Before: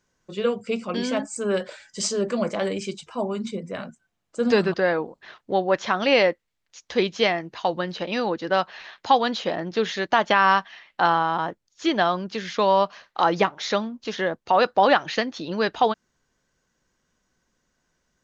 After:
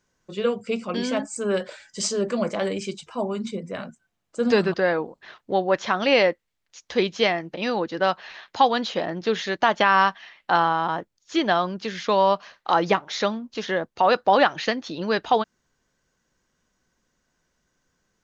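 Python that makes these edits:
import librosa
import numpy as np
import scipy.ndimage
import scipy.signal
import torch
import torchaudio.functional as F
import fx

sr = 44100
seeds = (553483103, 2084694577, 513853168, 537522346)

y = fx.edit(x, sr, fx.cut(start_s=7.54, length_s=0.5), tone=tone)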